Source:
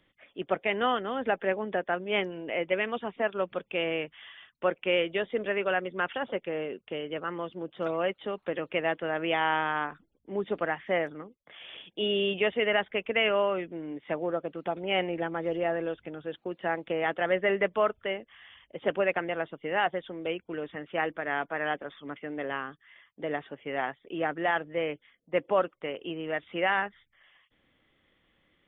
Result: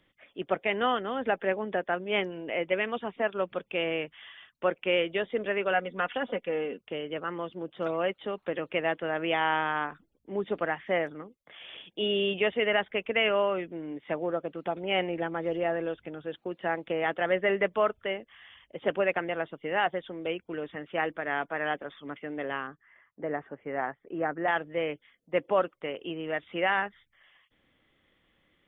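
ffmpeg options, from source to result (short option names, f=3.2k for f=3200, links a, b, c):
-filter_complex "[0:a]asettb=1/sr,asplit=3[a][b][c];[a]atrim=end=5.734[d];[b]atrim=start=5.73:end=6.78,asetpts=PTS-STARTPTS,afade=t=in:d=0.004:c=qsin,afade=t=out:st=1.046:d=0.004:c=qsin,aecho=1:1:4.1:0.56,atrim=end_sample=46305[e];[c]atrim=start=6.776[f];[d][e]acrossfade=d=0.004:c1=hsin:c2=qsin[g];[g][f]acrossfade=d=0.004:c1=qsin:c2=hsin,asettb=1/sr,asplit=3[h][i][j];[h]atrim=end=22.674[k];[i]atrim=start=22.67:end=24.48,asetpts=PTS-STARTPTS,afade=t=in:d=0.004:c=qsin,afade=t=out:st=1.806:d=0.004:c=qsin,lowpass=f=1.9k:w=0.5412,lowpass=f=1.9k:w=1.3066[l];[j]atrim=start=24.476[m];[k][l]acrossfade=d=0.004:c1=hsin:c2=qsin[n];[n][m]acrossfade=d=0.004:c1=qsin:c2=hsin"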